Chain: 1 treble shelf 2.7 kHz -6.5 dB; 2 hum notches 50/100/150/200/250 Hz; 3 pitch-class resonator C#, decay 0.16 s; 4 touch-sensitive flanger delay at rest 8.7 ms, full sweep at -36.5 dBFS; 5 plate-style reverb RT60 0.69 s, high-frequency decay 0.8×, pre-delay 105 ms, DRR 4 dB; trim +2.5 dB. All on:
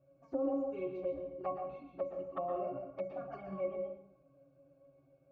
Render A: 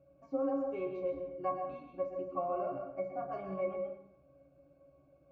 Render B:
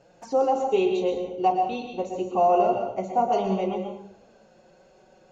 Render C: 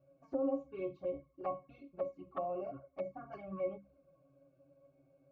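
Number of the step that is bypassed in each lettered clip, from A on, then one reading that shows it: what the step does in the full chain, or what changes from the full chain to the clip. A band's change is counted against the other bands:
4, 2 kHz band +2.5 dB; 3, 1 kHz band +6.5 dB; 5, crest factor change +2.0 dB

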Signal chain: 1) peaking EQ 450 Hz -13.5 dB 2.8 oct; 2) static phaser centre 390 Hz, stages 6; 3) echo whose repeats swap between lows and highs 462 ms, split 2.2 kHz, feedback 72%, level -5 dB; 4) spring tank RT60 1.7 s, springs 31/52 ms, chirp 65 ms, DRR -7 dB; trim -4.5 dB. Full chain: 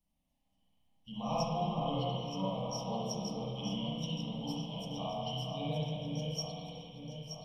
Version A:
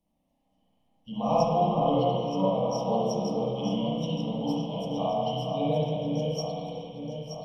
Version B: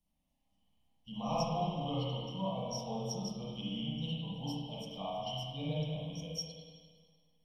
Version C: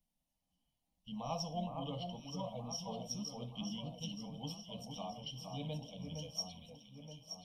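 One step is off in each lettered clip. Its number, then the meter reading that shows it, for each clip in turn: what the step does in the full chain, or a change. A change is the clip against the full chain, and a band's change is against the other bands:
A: 1, 500 Hz band +8.5 dB; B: 3, echo-to-direct 8.5 dB to 7.0 dB; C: 4, echo-to-direct 8.5 dB to -4.0 dB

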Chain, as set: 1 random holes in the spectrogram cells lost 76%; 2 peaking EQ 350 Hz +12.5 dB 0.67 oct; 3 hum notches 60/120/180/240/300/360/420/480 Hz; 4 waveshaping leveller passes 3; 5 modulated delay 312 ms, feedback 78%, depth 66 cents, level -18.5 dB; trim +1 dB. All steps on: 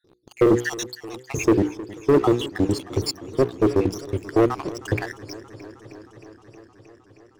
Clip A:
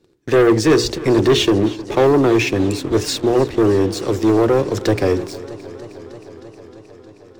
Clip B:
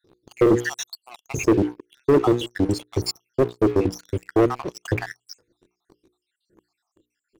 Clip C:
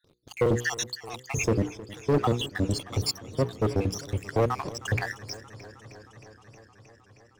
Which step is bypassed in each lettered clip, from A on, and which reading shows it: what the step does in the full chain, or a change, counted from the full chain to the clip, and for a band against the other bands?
1, 4 kHz band +4.0 dB; 5, momentary loudness spread change -4 LU; 2, 250 Hz band -8.5 dB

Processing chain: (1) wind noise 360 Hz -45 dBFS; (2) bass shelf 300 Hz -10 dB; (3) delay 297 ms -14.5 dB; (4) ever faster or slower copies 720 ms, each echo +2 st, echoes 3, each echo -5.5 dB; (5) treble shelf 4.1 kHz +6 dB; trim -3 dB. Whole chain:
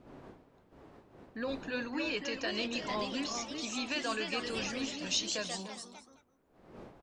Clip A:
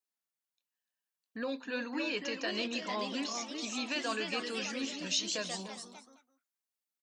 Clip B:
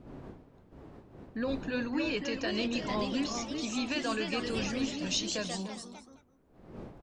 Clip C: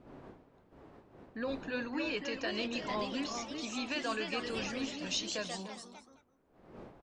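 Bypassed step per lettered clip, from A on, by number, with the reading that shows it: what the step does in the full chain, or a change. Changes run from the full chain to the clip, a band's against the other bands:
1, 125 Hz band -2.5 dB; 2, 125 Hz band +7.0 dB; 5, 8 kHz band -4.0 dB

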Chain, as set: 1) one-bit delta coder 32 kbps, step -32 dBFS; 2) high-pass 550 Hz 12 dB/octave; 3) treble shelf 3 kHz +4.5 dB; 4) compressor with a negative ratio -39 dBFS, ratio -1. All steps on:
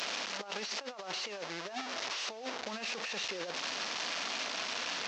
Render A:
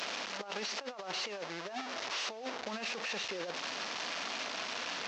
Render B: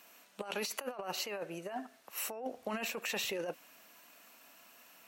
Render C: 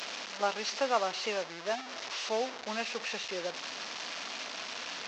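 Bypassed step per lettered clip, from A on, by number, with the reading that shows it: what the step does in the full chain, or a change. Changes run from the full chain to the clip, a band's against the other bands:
3, 8 kHz band -3.0 dB; 1, 4 kHz band -7.5 dB; 4, crest factor change +5.5 dB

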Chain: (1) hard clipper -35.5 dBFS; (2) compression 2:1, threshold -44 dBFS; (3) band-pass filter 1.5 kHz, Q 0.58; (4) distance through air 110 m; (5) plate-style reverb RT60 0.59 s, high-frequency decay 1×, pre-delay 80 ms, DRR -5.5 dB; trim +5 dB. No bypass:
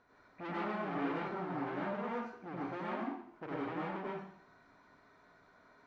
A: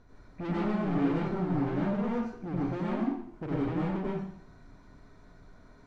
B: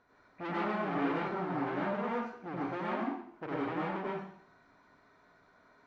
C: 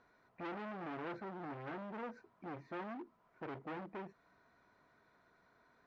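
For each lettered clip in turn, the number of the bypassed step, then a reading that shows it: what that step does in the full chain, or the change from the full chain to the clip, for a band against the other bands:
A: 3, 125 Hz band +11.0 dB; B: 2, loudness change +4.0 LU; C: 5, crest factor change -2.0 dB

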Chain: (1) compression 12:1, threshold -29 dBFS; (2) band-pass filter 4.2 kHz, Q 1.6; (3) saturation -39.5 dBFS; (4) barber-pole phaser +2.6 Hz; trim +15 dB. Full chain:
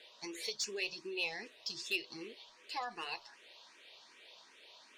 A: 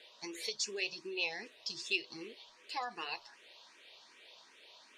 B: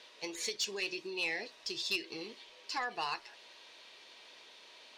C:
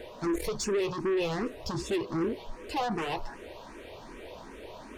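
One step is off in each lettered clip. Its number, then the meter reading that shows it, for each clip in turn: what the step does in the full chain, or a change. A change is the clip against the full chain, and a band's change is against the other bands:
3, distortion -18 dB; 4, crest factor change -4.0 dB; 2, 125 Hz band +18.0 dB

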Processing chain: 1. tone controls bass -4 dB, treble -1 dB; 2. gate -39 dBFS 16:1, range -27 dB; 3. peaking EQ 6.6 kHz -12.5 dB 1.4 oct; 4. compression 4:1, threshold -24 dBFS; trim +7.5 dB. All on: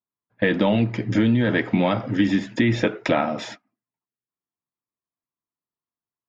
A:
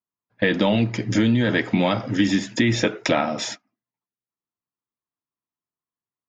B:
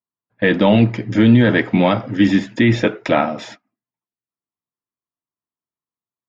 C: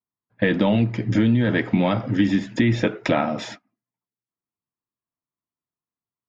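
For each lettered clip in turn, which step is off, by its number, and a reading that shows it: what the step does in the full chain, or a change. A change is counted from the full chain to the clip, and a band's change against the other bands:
3, 4 kHz band +5.0 dB; 4, crest factor change -2.0 dB; 1, 125 Hz band +3.0 dB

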